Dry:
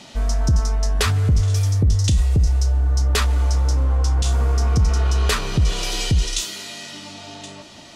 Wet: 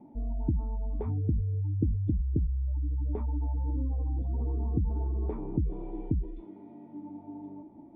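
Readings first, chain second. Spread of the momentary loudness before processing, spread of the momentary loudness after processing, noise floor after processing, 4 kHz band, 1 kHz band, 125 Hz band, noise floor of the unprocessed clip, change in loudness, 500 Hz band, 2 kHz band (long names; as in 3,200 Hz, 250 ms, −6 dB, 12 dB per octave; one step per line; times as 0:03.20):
15 LU, 14 LU, −51 dBFS, below −40 dB, −17.5 dB, −12.0 dB, −42 dBFS, −12.0 dB, −11.0 dB, below −40 dB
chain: gate on every frequency bin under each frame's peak −30 dB strong
formant resonators in series u
level +2.5 dB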